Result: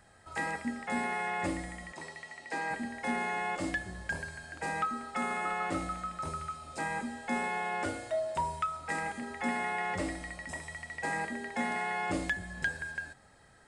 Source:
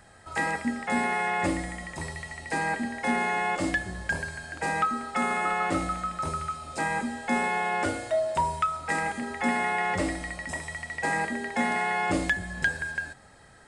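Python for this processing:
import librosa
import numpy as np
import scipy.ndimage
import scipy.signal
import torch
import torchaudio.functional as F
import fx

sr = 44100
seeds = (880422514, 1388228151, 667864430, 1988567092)

y = fx.bandpass_edges(x, sr, low_hz=260.0, high_hz=7400.0, at=(1.92, 2.71))
y = F.gain(torch.from_numpy(y), -6.5).numpy()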